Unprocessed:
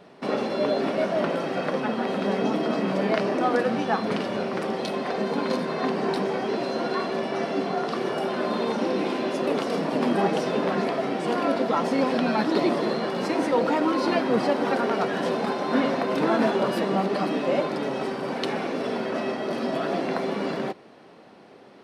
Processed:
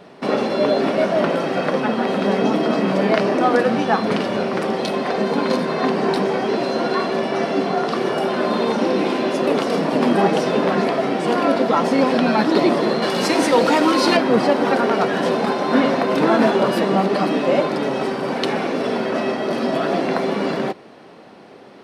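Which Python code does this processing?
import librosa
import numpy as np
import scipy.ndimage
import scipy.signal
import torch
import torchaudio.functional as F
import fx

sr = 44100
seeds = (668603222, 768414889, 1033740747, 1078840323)

y = fx.high_shelf(x, sr, hz=2900.0, db=11.0, at=(13.02, 14.17))
y = F.gain(torch.from_numpy(y), 6.5).numpy()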